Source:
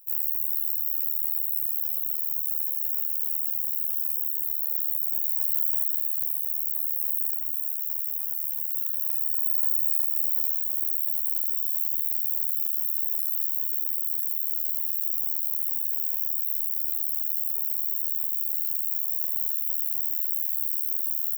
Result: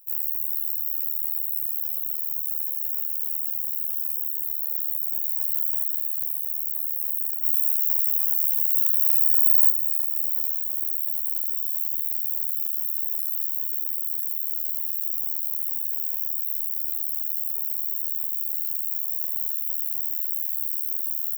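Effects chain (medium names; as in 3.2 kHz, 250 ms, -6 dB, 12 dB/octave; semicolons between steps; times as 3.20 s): 7.43–9.71 s: treble shelf 10 kHz +8 dB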